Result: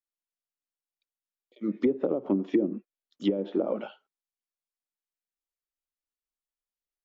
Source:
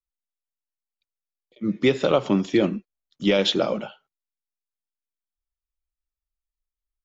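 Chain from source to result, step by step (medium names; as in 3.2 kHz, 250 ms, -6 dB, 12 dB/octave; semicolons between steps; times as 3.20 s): resonant low shelf 180 Hz -14 dB, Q 1.5; low-pass that closes with the level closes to 350 Hz, closed at -14.5 dBFS; trim -4.5 dB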